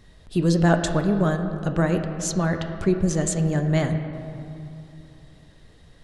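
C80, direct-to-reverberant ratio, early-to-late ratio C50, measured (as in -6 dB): 8.0 dB, 5.5 dB, 7.0 dB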